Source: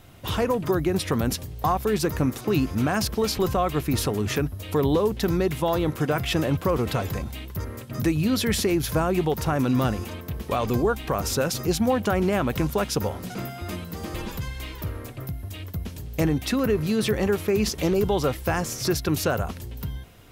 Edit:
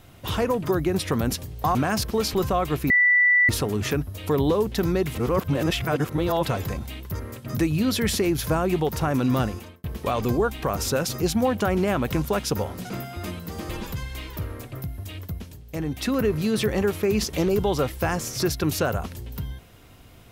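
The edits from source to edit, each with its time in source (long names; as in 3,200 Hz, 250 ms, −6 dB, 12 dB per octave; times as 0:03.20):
0:01.75–0:02.79: remove
0:03.94: insert tone 1,970 Hz −14.5 dBFS 0.59 s
0:05.60–0:06.90: reverse
0:09.89–0:10.29: fade out
0:15.68–0:16.59: duck −9 dB, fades 0.40 s linear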